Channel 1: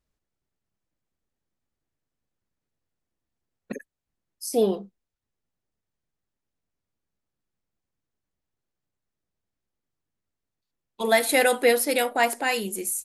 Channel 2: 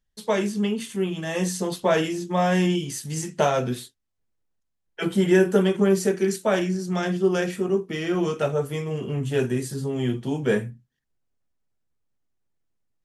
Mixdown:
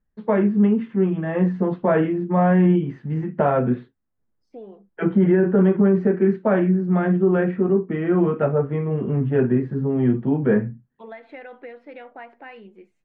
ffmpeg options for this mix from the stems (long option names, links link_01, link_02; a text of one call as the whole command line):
ffmpeg -i stem1.wav -i stem2.wav -filter_complex "[0:a]lowpass=frequency=2400:width=0.5412,lowpass=frequency=2400:width=1.3066,acompressor=threshold=-23dB:ratio=6,volume=-12.5dB[link_01];[1:a]lowpass=frequency=1800:width=0.5412,lowpass=frequency=1800:width=1.3066,equalizer=frequency=220:width_type=o:width=1.2:gain=6,volume=2.5dB[link_02];[link_01][link_02]amix=inputs=2:normalize=0,alimiter=limit=-9dB:level=0:latency=1:release=20" out.wav